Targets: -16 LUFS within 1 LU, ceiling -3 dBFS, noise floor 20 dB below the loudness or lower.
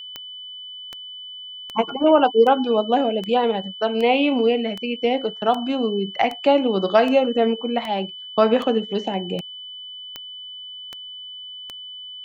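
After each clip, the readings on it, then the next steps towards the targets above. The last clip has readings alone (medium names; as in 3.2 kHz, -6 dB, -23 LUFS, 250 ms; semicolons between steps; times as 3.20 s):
clicks found 16; steady tone 3 kHz; tone level -34 dBFS; loudness -20.5 LUFS; peak level -4.5 dBFS; loudness target -16.0 LUFS
-> de-click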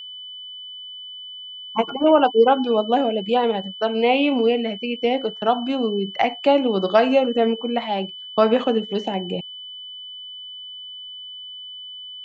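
clicks found 0; steady tone 3 kHz; tone level -34 dBFS
-> band-stop 3 kHz, Q 30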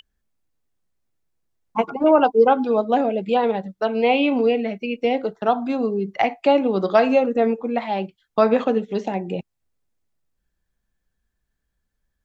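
steady tone not found; loudness -20.5 LUFS; peak level -4.5 dBFS; loudness target -16.0 LUFS
-> trim +4.5 dB; peak limiter -3 dBFS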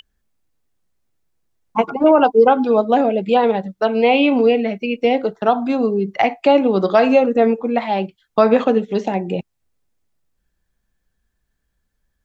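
loudness -16.5 LUFS; peak level -3.0 dBFS; noise floor -72 dBFS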